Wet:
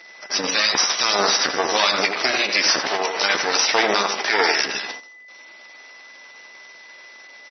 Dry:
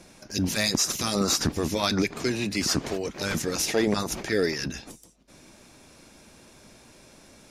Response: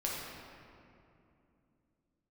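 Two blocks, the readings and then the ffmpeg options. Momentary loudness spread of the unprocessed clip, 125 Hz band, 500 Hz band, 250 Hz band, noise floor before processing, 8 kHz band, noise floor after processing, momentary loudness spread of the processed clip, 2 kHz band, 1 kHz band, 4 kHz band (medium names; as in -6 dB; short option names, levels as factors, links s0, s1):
7 LU, under -10 dB, +4.0 dB, -5.5 dB, -54 dBFS, +4.5 dB, -45 dBFS, 7 LU, +12.5 dB, +13.0 dB, +10.0 dB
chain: -filter_complex "[0:a]aeval=exprs='max(val(0),0)':c=same,highpass=740,asplit=2[s0][s1];[s1]adelay=84,lowpass=f=1800:p=1,volume=0.562,asplit=2[s2][s3];[s3]adelay=84,lowpass=f=1800:p=1,volume=0.28,asplit=2[s4][s5];[s5]adelay=84,lowpass=f=1800:p=1,volume=0.28,asplit=2[s6][s7];[s7]adelay=84,lowpass=f=1800:p=1,volume=0.28[s8];[s2][s4][s6][s8]amix=inputs=4:normalize=0[s9];[s0][s9]amix=inputs=2:normalize=0,tremolo=f=20:d=0.333,aeval=exprs='val(0)+0.00141*sin(2*PI*2000*n/s)':c=same,agate=range=0.355:threshold=0.00224:ratio=16:detection=peak,asplit=2[s10][s11];[s11]adelay=15,volume=0.266[s12];[s10][s12]amix=inputs=2:normalize=0,asplit=2[s13][s14];[s14]acompressor=threshold=0.00794:ratio=16,volume=1.26[s15];[s13][s15]amix=inputs=2:normalize=0,alimiter=level_in=7.5:limit=0.891:release=50:level=0:latency=1,volume=0.75" -ar 24000 -c:a libmp3lame -b:a 24k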